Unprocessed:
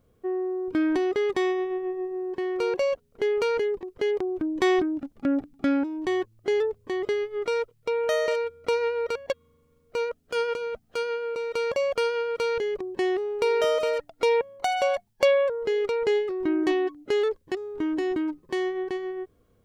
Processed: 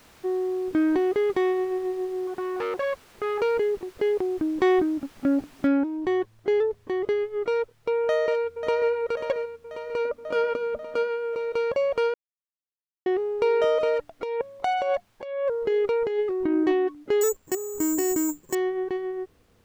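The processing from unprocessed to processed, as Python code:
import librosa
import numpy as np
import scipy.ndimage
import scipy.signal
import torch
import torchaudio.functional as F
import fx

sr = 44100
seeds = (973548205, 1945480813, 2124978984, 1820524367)

y = fx.transformer_sat(x, sr, knee_hz=1500.0, at=(2.27, 3.41))
y = fx.noise_floor_step(y, sr, seeds[0], at_s=5.67, before_db=-47, after_db=-61, tilt_db=0.0)
y = fx.echo_throw(y, sr, start_s=8.02, length_s=0.89, ms=540, feedback_pct=65, wet_db=-8.0)
y = fx.small_body(y, sr, hz=(260.0, 590.0, 1200.0), ring_ms=45, db=13, at=(10.05, 11.08))
y = fx.over_compress(y, sr, threshold_db=-24.0, ratio=-0.5, at=(13.77, 16.66), fade=0.02)
y = fx.resample_bad(y, sr, factor=6, down='filtered', up='zero_stuff', at=(17.21, 18.55))
y = fx.edit(y, sr, fx.silence(start_s=12.14, length_s=0.92), tone=tone)
y = fx.lowpass(y, sr, hz=1600.0, slope=6)
y = F.gain(torch.from_numpy(y), 2.0).numpy()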